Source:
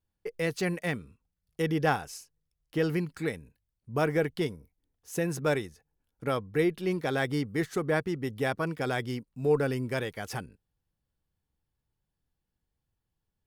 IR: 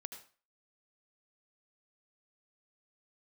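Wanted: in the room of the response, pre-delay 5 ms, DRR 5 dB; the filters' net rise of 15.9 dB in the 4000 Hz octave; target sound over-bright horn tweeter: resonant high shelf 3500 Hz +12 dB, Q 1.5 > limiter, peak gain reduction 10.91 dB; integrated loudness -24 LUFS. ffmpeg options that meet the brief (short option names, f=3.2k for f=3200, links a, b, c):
-filter_complex "[0:a]equalizer=f=4k:t=o:g=9,asplit=2[a][b];[1:a]atrim=start_sample=2205,adelay=5[c];[b][c]afir=irnorm=-1:irlink=0,volume=-1.5dB[d];[a][d]amix=inputs=2:normalize=0,highshelf=f=3.5k:t=q:w=1.5:g=12,volume=5.5dB,alimiter=limit=-12dB:level=0:latency=1"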